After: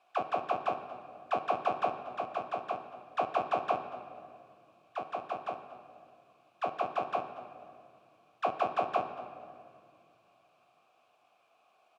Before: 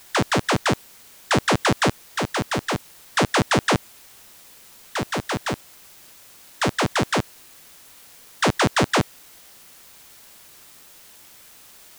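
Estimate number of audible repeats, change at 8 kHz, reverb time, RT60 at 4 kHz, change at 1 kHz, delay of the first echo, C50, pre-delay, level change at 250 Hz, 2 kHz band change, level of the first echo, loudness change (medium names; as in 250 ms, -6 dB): 2, under -35 dB, 2.4 s, 1.5 s, -6.5 dB, 237 ms, 9.0 dB, 5 ms, -22.0 dB, -20.0 dB, -17.5 dB, -12.5 dB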